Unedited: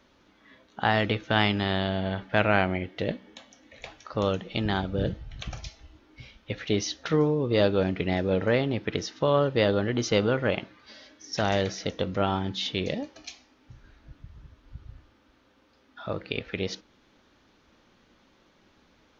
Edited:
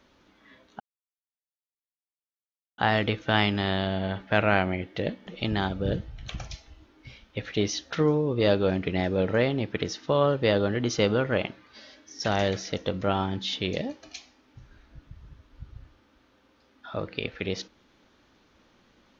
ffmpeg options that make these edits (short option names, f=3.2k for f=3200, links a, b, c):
-filter_complex "[0:a]asplit=3[a][b][c];[a]atrim=end=0.8,asetpts=PTS-STARTPTS,afade=t=out:st=0.796:d=0.004:c=hsin,apad=pad_dur=1.98[d];[b]atrim=start=0.8:end=3.292,asetpts=PTS-STARTPTS,afade=t=in:d=0.004:c=hsin[e];[c]atrim=start=4.398[f];[d][e]concat=n=2:v=0:a=1[g];[g][f]acrossfade=d=0.004:c1=hsin:c2=hsin"